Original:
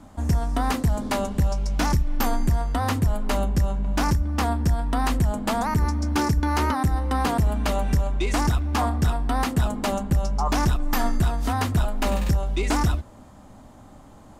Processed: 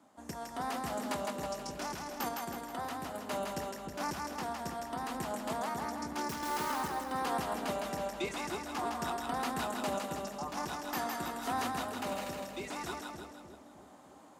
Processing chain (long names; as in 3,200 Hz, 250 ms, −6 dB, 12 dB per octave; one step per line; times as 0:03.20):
high-pass filter 310 Hz 12 dB per octave
brickwall limiter −19.5 dBFS, peak gain reduction 7.5 dB
sample-and-hold tremolo
0:06.29–0:06.72: bit-depth reduction 6 bits, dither none
on a send: echo with a time of its own for lows and highs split 590 Hz, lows 304 ms, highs 160 ms, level −3 dB
on the sum: level −5.5 dB